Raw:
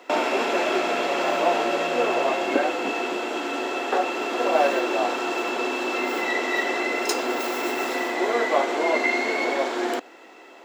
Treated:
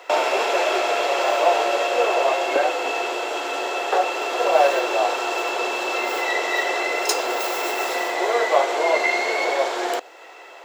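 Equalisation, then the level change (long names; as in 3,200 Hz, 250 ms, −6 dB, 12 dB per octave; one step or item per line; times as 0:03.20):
dynamic equaliser 1,700 Hz, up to −4 dB, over −44 dBFS, Q 0.71
high-pass filter 450 Hz 24 dB per octave
+5.5 dB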